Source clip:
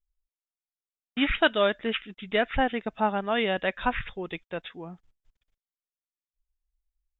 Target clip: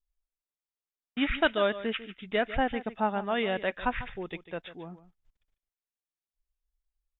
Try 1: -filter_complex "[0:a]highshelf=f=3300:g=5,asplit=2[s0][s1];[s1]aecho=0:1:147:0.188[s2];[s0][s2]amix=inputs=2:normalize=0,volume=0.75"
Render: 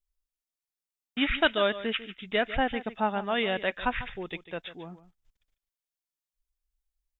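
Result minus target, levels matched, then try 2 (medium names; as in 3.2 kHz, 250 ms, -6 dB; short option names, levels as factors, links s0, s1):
4 kHz band +3.5 dB
-filter_complex "[0:a]highshelf=f=3300:g=-5,asplit=2[s0][s1];[s1]aecho=0:1:147:0.188[s2];[s0][s2]amix=inputs=2:normalize=0,volume=0.75"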